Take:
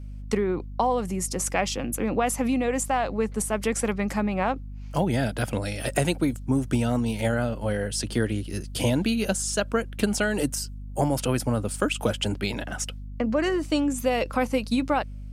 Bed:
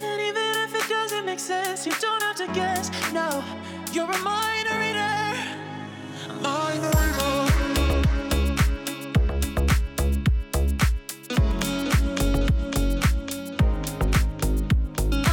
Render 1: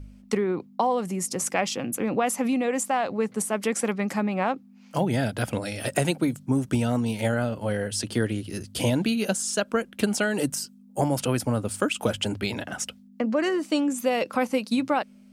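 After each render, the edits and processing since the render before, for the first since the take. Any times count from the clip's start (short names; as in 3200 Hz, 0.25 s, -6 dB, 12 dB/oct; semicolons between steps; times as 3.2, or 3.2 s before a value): de-hum 50 Hz, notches 3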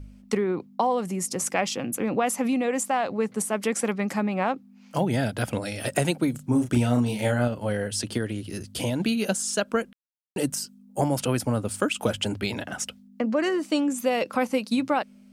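6.31–7.48 doubler 33 ms -5 dB; 8.17–9 compressor 1.5:1, threshold -29 dBFS; 9.93–10.36 mute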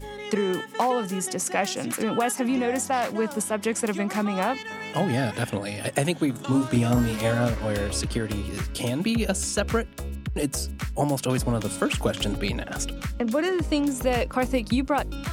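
add bed -10.5 dB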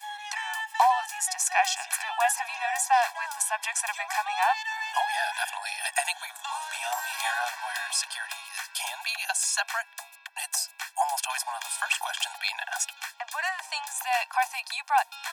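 steep high-pass 710 Hz 96 dB/oct; comb 1.2 ms, depth 89%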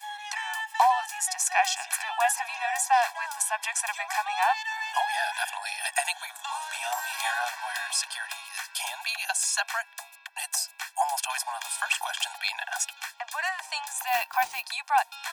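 14.07–14.64 sample-rate reducer 15000 Hz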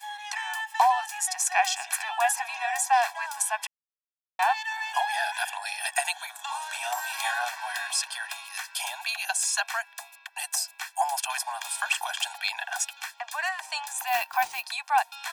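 3.67–4.39 mute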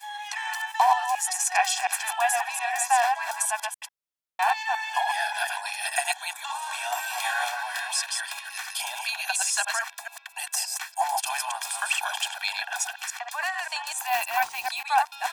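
reverse delay 0.144 s, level -4 dB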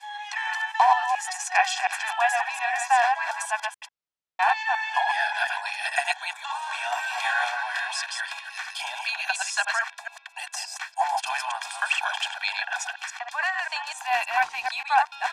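Bessel low-pass 4900 Hz, order 2; dynamic EQ 1700 Hz, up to +4 dB, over -37 dBFS, Q 0.86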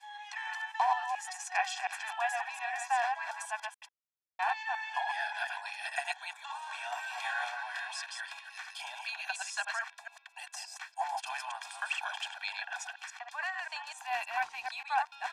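gain -10 dB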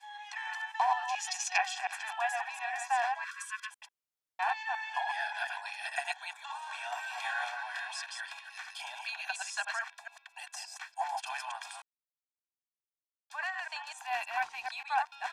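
1.08–1.58 band shelf 3900 Hz +10 dB; 3.24–3.71 brick-wall FIR high-pass 1000 Hz; 11.82–13.3 mute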